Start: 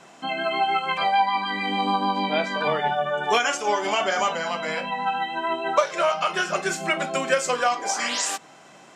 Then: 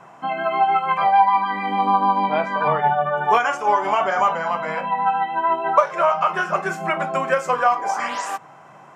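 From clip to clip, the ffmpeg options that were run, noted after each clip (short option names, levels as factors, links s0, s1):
-af "equalizer=f=125:t=o:w=1:g=10,equalizer=f=250:t=o:w=1:g=-4,equalizer=f=1000:t=o:w=1:g=9,equalizer=f=4000:t=o:w=1:g=-11,equalizer=f=8000:t=o:w=1:g=-9"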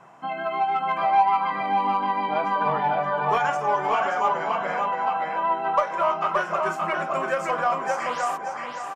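-filter_complex "[0:a]asplit=2[s0][s1];[s1]asoftclip=type=tanh:threshold=0.168,volume=0.501[s2];[s0][s2]amix=inputs=2:normalize=0,asplit=2[s3][s4];[s4]adelay=573,lowpass=f=4800:p=1,volume=0.708,asplit=2[s5][s6];[s6]adelay=573,lowpass=f=4800:p=1,volume=0.33,asplit=2[s7][s8];[s8]adelay=573,lowpass=f=4800:p=1,volume=0.33,asplit=2[s9][s10];[s10]adelay=573,lowpass=f=4800:p=1,volume=0.33[s11];[s3][s5][s7][s9][s11]amix=inputs=5:normalize=0,volume=0.376"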